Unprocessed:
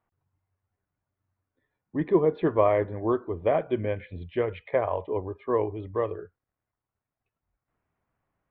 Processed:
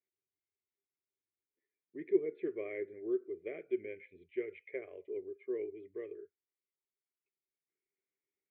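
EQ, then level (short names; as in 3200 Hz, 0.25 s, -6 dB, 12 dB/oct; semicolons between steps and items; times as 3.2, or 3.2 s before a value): double band-pass 920 Hz, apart 2.5 oct; -5.0 dB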